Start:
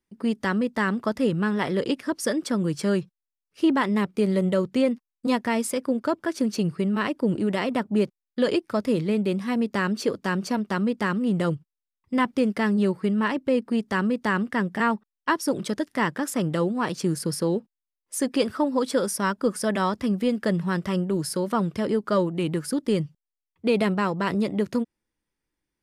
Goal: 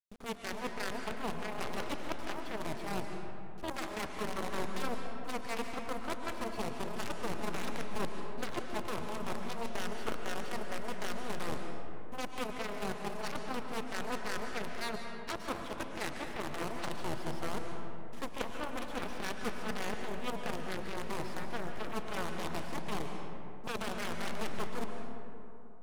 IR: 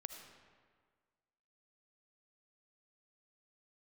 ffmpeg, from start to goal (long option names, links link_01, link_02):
-filter_complex "[0:a]aeval=exprs='if(lt(val(0),0),0.447*val(0),val(0))':channel_layout=same,lowpass=frequency=3400:width=0.5412,lowpass=frequency=3400:width=1.3066,areverse,acompressor=threshold=-38dB:ratio=4,areverse,acrusher=bits=7:dc=4:mix=0:aa=0.000001,aeval=exprs='0.0531*(cos(1*acos(clip(val(0)/0.0531,-1,1)))-cos(1*PI/2))+0.0188*(cos(3*acos(clip(val(0)/0.0531,-1,1)))-cos(3*PI/2))+0.00211*(cos(5*acos(clip(val(0)/0.0531,-1,1)))-cos(5*PI/2))+0.0106*(cos(7*acos(clip(val(0)/0.0531,-1,1)))-cos(7*PI/2))':channel_layout=same,tremolo=f=240:d=0.75[link_01];[1:a]atrim=start_sample=2205,asetrate=23373,aresample=44100[link_02];[link_01][link_02]afir=irnorm=-1:irlink=0,volume=8dB"